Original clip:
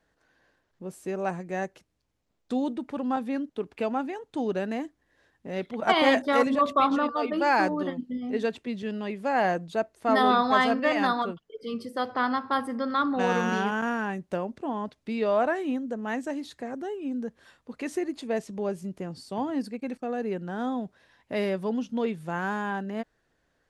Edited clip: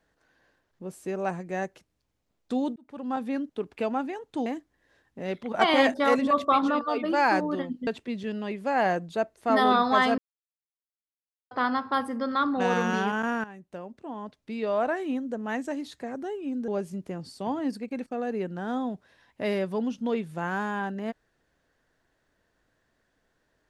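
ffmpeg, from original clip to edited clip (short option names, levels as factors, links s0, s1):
-filter_complex "[0:a]asplit=8[s0][s1][s2][s3][s4][s5][s6][s7];[s0]atrim=end=2.76,asetpts=PTS-STARTPTS,afade=t=out:st=2.756:d=0.004:c=hsin[s8];[s1]atrim=start=2.76:end=4.462,asetpts=PTS-STARTPTS,afade=t=in:d=0.49[s9];[s2]atrim=start=4.738:end=8.152[s10];[s3]atrim=start=8.458:end=10.77,asetpts=PTS-STARTPTS,afade=t=out:st=2.308:d=0.004:c=hsin[s11];[s4]atrim=start=10.77:end=12.1,asetpts=PTS-STARTPTS,volume=0[s12];[s5]atrim=start=12.1:end=14.03,asetpts=PTS-STARTPTS,afade=t=in:d=0.004:c=hsin,afade=t=out:st=1.926:d=0.004:c=hsin:silence=0.188365[s13];[s6]atrim=start=14.03:end=17.272,asetpts=PTS-STARTPTS,afade=t=in:d=1.88:silence=0.188365[s14];[s7]atrim=start=18.588[s15];[s8][s9]concat=n=2:v=0:a=1[s16];[s16][s10]acrossfade=d=0.004:c1=hsin:c2=hsin[s17];[s11][s12][s13][s14]concat=n=4:v=0:a=1[s18];[s17][s18]acrossfade=d=0.004:c1=hsin:c2=hsin[s19];[s19][s15]acrossfade=d=0.004:c1=hsin:c2=hsin"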